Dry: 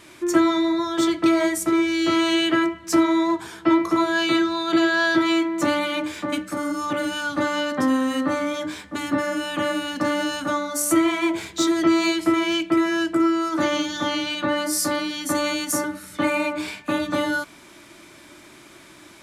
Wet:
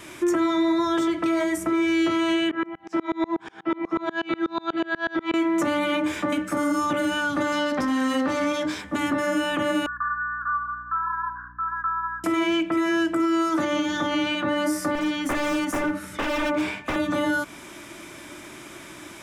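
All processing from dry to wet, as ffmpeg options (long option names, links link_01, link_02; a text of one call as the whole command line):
ffmpeg -i in.wav -filter_complex "[0:a]asettb=1/sr,asplit=3[link_01][link_02][link_03];[link_01]atrim=end=2.514[link_04];[link_02]atrim=start=2.51:end=5.34,asetpts=PTS-STARTPTS,afade=type=in:duration=0.004:curve=qsin,afade=type=out:start_time=2.826:duration=0.004:curve=qsin,aeval=exprs='val(0)+0.00501*sin(2*PI*790*n/s)':channel_layout=same,highpass=160,lowpass=3400,aeval=exprs='val(0)*pow(10,-31*if(lt(mod(-8.2*n/s,1),2*abs(-8.2)/1000),1-mod(-8.2*n/s,1)/(2*abs(-8.2)/1000),(mod(-8.2*n/s,1)-2*abs(-8.2)/1000)/(1-2*abs(-8.2)/1000))/20)':channel_layout=same[link_05];[link_03]atrim=start=5.336[link_06];[link_04][link_05]acrossfade=duration=0.004:curve1=hsin:curve2=qsin[link_07];[link_07][link_06]acrossfade=duration=0.004:curve1=qsin:curve2=hsin,asettb=1/sr,asplit=3[link_08][link_09][link_10];[link_08]atrim=end=7.524[link_11];[link_09]atrim=start=7.52:end=8.82,asetpts=PTS-STARTPTS,afade=type=in:duration=0.004:curve=qsin,afade=type=out:start_time=1.296:duration=0.004:curve=qsin,equalizer=frequency=4800:width_type=o:width=0.84:gain=11,aeval=exprs='(tanh(8.91*val(0)+0.55)-tanh(0.55))/8.91':channel_layout=same,highpass=60[link_12];[link_10]atrim=start=8.816[link_13];[link_11][link_12]acrossfade=duration=0.004:curve1=hsin:curve2=qsin[link_14];[link_14][link_13]acrossfade=duration=0.004:curve1=qsin:curve2=hsin,asettb=1/sr,asplit=3[link_15][link_16][link_17];[link_15]atrim=end=9.864[link_18];[link_16]atrim=start=9.86:end=12.24,asetpts=PTS-STARTPTS,afade=type=in:duration=0.004:curve=qsin,afade=type=out:start_time=2.376:duration=0.004:curve=qsin,asuperpass=centerf=1300:order=20:qfactor=1.8,aeval=exprs='val(0)+0.002*(sin(2*PI*60*n/s)+sin(2*PI*2*60*n/s)/2+sin(2*PI*3*60*n/s)/3+sin(2*PI*4*60*n/s)/4+sin(2*PI*5*60*n/s)/5)':channel_layout=same[link_19];[link_17]atrim=start=12.236[link_20];[link_18][link_19]acrossfade=duration=0.004:curve1=hsin:curve2=qsin[link_21];[link_21][link_20]acrossfade=duration=0.004:curve1=qsin:curve2=hsin,asettb=1/sr,asplit=3[link_22][link_23][link_24];[link_22]atrim=end=14.954[link_25];[link_23]atrim=start=14.95:end=16.96,asetpts=PTS-STARTPTS,afade=type=in:duration=0.004:curve=qsin,afade=type=out:start_time=2.006:duration=0.004:curve=qsin,aemphasis=mode=reproduction:type=cd,aeval=exprs='0.0708*(abs(mod(val(0)/0.0708+3,4)-2)-1)':channel_layout=same[link_26];[link_24]atrim=start=16.956[link_27];[link_25][link_26]acrossfade=duration=0.004:curve1=hsin:curve2=qsin[link_28];[link_28][link_27]acrossfade=duration=0.004:curve1=qsin:curve2=hsin,equalizer=frequency=4300:width=5:gain=-7.5,acrossover=split=390|2500[link_29][link_30][link_31];[link_29]acompressor=threshold=-29dB:ratio=4[link_32];[link_30]acompressor=threshold=-29dB:ratio=4[link_33];[link_31]acompressor=threshold=-44dB:ratio=4[link_34];[link_32][link_33][link_34]amix=inputs=3:normalize=0,alimiter=limit=-21dB:level=0:latency=1:release=66,volume=5.5dB" out.wav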